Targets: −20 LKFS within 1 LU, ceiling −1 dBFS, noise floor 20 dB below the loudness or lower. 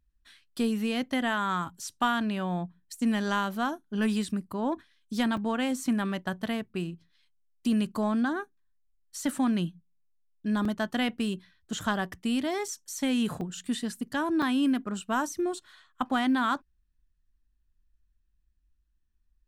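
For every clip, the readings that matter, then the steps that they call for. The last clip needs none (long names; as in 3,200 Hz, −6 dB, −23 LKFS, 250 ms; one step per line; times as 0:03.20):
number of dropouts 5; longest dropout 3.8 ms; integrated loudness −30.0 LKFS; sample peak −13.5 dBFS; target loudness −20.0 LKFS
→ repair the gap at 0:05.37/0:10.65/0:12.68/0:13.41/0:14.42, 3.8 ms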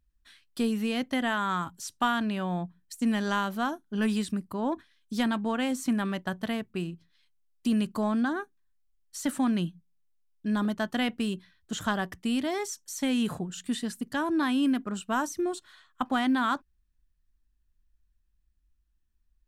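number of dropouts 0; integrated loudness −30.0 LKFS; sample peak −13.5 dBFS; target loudness −20.0 LKFS
→ level +10 dB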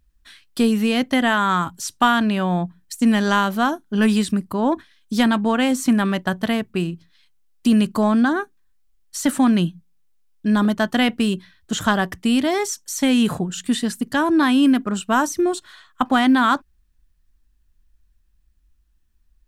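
integrated loudness −20.0 LKFS; sample peak −3.5 dBFS; background noise floor −62 dBFS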